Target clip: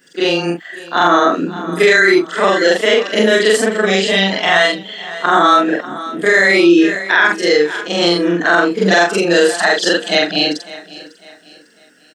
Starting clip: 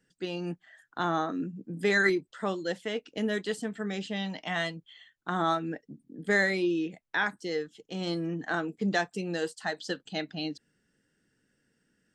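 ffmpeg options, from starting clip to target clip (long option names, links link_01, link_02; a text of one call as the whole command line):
ffmpeg -i in.wav -filter_complex "[0:a]afftfilt=real='re':imag='-im':win_size=4096:overlap=0.75,highpass=370,bandreject=frequency=810:width=12,asplit=2[link_01][link_02];[link_02]aecho=0:1:550|1100|1650:0.106|0.0392|0.0145[link_03];[link_01][link_03]amix=inputs=2:normalize=0,alimiter=level_in=29dB:limit=-1dB:release=50:level=0:latency=1,volume=-1dB" out.wav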